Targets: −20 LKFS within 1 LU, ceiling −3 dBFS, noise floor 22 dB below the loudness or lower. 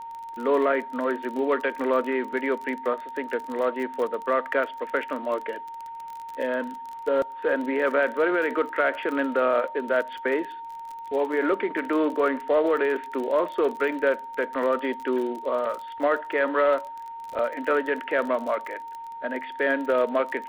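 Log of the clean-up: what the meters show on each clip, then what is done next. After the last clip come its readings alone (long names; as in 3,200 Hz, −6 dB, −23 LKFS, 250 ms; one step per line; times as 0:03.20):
crackle rate 31 per second; interfering tone 920 Hz; level of the tone −35 dBFS; integrated loudness −26.0 LKFS; sample peak −10.5 dBFS; target loudness −20.0 LKFS
→ click removal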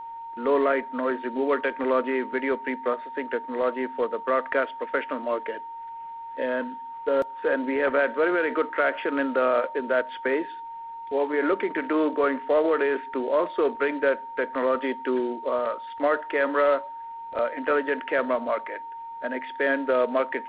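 crackle rate 0 per second; interfering tone 920 Hz; level of the tone −35 dBFS
→ notch filter 920 Hz, Q 30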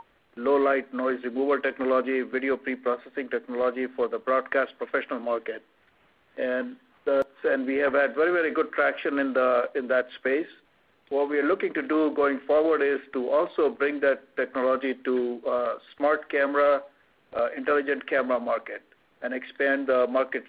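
interfering tone none found; integrated loudness −26.0 LKFS; sample peak −10.5 dBFS; target loudness −20.0 LKFS
→ level +6 dB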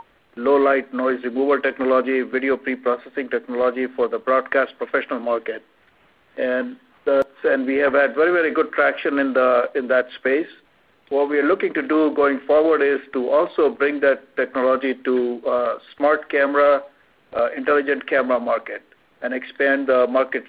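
integrated loudness −20.0 LKFS; sample peak −4.5 dBFS; background noise floor −58 dBFS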